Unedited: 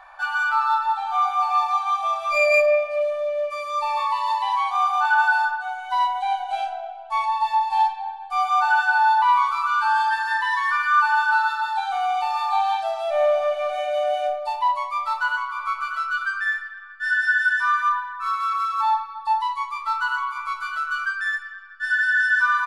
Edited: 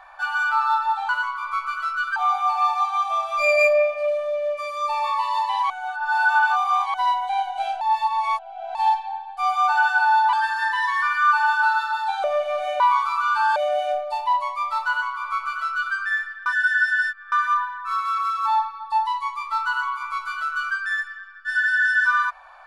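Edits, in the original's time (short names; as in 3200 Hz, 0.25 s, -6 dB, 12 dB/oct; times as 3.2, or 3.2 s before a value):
4.63–5.87 reverse
6.74–7.68 reverse
9.26–10.02 move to 13.91
11.93–13.35 cut
15.23–16.3 copy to 1.09
16.81–17.67 reverse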